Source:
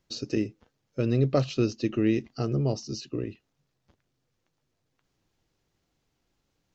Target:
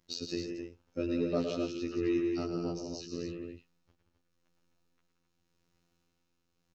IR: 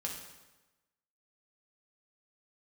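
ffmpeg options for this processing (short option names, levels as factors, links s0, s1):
-filter_complex "[0:a]asplit=2[s0][s1];[s1]acompressor=threshold=0.0316:ratio=6,volume=1.12[s2];[s0][s2]amix=inputs=2:normalize=0,afftfilt=real='hypot(re,im)*cos(PI*b)':imag='0':win_size=2048:overlap=0.75,tremolo=f=0.86:d=0.49,asoftclip=type=tanh:threshold=0.251,aecho=1:1:110.8|174.9|259.5:0.398|0.447|0.447,volume=0.596"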